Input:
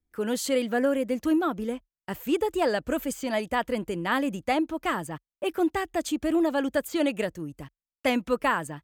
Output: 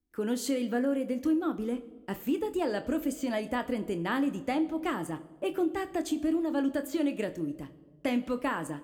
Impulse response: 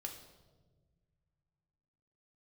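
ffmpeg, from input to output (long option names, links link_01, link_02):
-filter_complex "[0:a]equalizer=frequency=290:width_type=o:width=0.81:gain=8,acompressor=threshold=-23dB:ratio=4,asplit=2[link_01][link_02];[1:a]atrim=start_sample=2205,adelay=25[link_03];[link_02][link_03]afir=irnorm=-1:irlink=0,volume=-6.5dB[link_04];[link_01][link_04]amix=inputs=2:normalize=0,volume=-4dB"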